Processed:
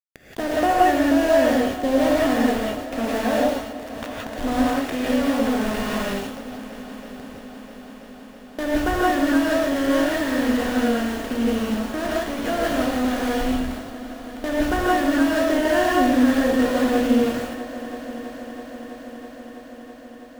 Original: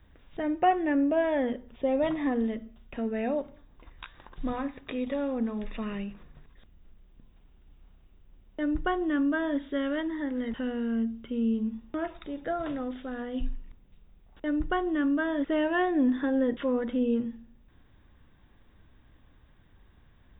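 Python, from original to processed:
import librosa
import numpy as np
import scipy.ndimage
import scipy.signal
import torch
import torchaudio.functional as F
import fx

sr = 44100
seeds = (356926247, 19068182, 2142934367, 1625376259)

y = fx.bin_compress(x, sr, power=0.6)
y = np.where(np.abs(y) >= 10.0 ** (-30.0 / 20.0), y, 0.0)
y = fx.echo_heads(y, sr, ms=327, heads='all three', feedback_pct=72, wet_db=-21.0)
y = fx.rev_gated(y, sr, seeds[0], gate_ms=200, shape='rising', drr_db=-4.0)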